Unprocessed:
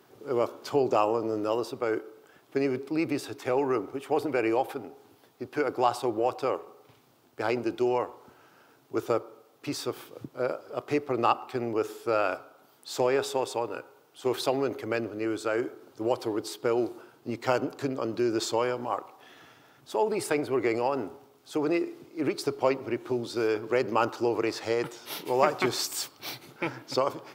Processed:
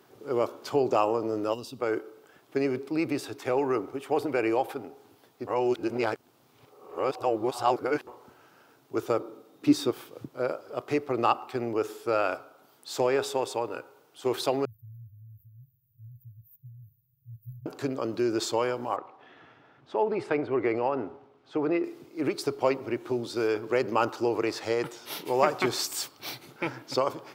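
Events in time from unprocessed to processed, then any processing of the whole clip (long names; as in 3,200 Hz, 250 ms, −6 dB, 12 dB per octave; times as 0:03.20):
0:01.54–0:01.79: gain on a spectral selection 280–2,500 Hz −13 dB
0:05.47–0:08.07: reverse
0:09.19–0:09.91: hollow resonant body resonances 200/290/3,700 Hz, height 14 dB, ringing for 60 ms
0:14.65–0:17.66: linear-phase brick-wall band-stop 150–13,000 Hz
0:18.96–0:21.84: low-pass filter 2,600 Hz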